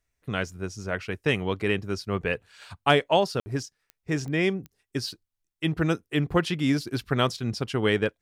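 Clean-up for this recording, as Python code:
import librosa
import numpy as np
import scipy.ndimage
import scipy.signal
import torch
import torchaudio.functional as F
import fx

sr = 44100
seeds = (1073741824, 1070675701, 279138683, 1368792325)

y = fx.fix_declick_ar(x, sr, threshold=10.0)
y = fx.fix_ambience(y, sr, seeds[0], print_start_s=5.12, print_end_s=5.62, start_s=3.4, end_s=3.46)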